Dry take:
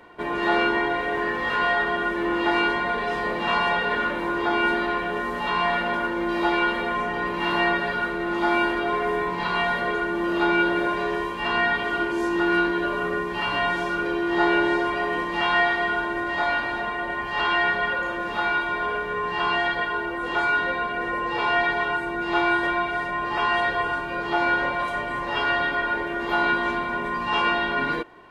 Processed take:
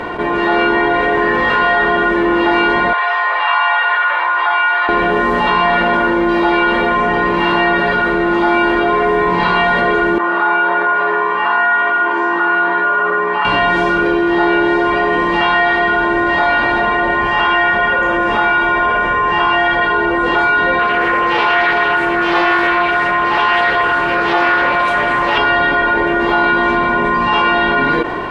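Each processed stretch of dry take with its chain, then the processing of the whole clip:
0:02.93–0:04.89: high-pass filter 850 Hz 24 dB per octave + high-frequency loss of the air 240 metres
0:10.18–0:13.45: resonant band-pass 1,200 Hz, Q 1.9 + flutter between parallel walls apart 8.6 metres, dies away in 0.5 s
0:17.27–0:19.82: parametric band 4,200 Hz −10 dB 0.24 octaves + mains-hum notches 60/120/180/240/300/360/420/480/540 Hz
0:20.79–0:25.38: spectral tilt +1.5 dB per octave + highs frequency-modulated by the lows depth 0.21 ms
whole clip: automatic gain control; low-pass filter 3,000 Hz 6 dB per octave; envelope flattener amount 70%; level −1 dB

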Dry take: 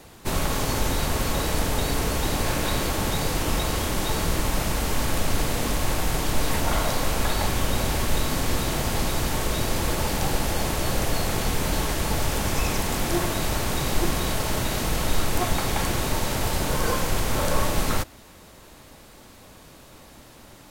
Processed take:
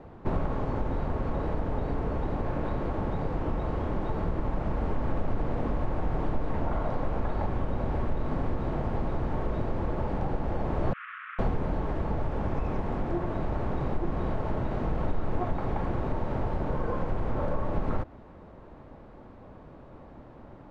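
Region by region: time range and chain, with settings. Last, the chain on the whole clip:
0:10.93–0:11.39: variable-slope delta modulation 16 kbit/s + Butterworth high-pass 1,200 Hz 96 dB per octave
whole clip: downward compressor, threshold −23 dBFS; low-pass filter 1,000 Hz 12 dB per octave; speech leveller

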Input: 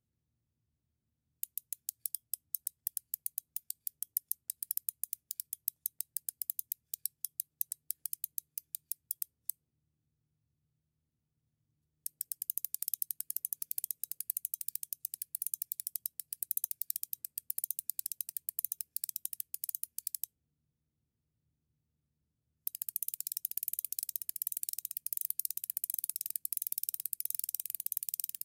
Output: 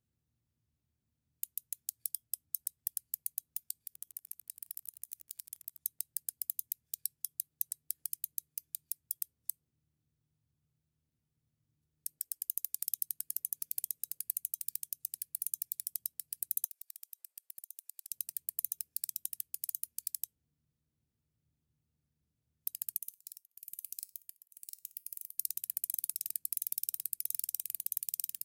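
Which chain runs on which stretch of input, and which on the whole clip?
0:03.84–0:05.81: downward compressor 12 to 1, threshold −38 dBFS + feedback echo at a low word length 82 ms, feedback 35%, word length 9 bits, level −9.5 dB
0:12.18–0:12.74: parametric band 150 Hz −14.5 dB 1.1 octaves + hum removal 96.77 Hz, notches 9
0:16.65–0:18.11: downward compressor 10 to 1, threshold −43 dBFS + high-pass filter 580 Hz 24 dB per octave
0:22.98–0:25.38: output level in coarse steps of 19 dB + tuned comb filter 96 Hz, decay 0.33 s, harmonics odd, mix 40% + tremolo along a rectified sine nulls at 1 Hz
whole clip: no processing

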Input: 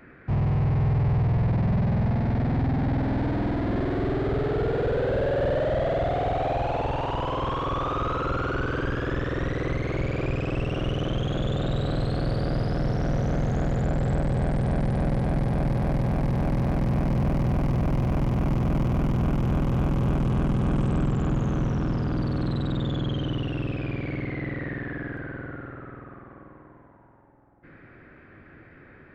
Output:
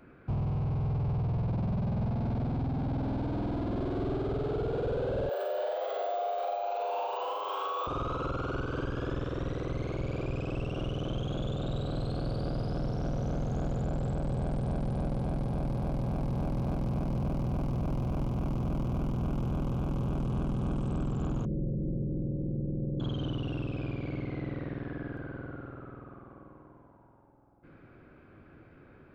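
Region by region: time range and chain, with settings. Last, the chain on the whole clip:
0:05.29–0:07.87: Butterworth high-pass 440 Hz + bad sample-rate conversion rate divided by 2×, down filtered, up hold + flutter between parallel walls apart 6.6 metres, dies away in 1.2 s
0:21.45–0:23.00: Butterworth low-pass 580 Hz 96 dB per octave + comb filter 5.7 ms, depth 52% + highs frequency-modulated by the lows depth 0.11 ms
whole clip: parametric band 1,900 Hz −11.5 dB 0.48 octaves; notch filter 1,800 Hz, Q 20; brickwall limiter −21.5 dBFS; level −4 dB

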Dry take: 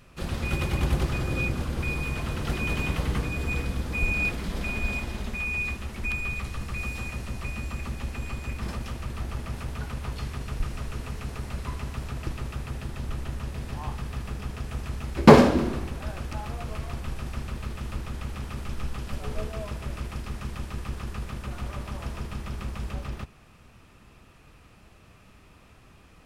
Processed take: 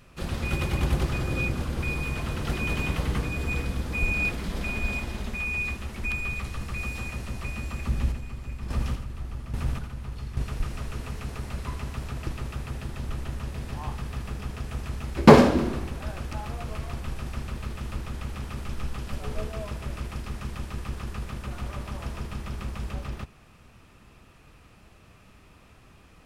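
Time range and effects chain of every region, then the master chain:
0:07.87–0:10.44: low-shelf EQ 200 Hz +8.5 dB + square-wave tremolo 1.2 Hz, depth 65%, duty 30% + single-tap delay 86 ms −8 dB
whole clip: no processing

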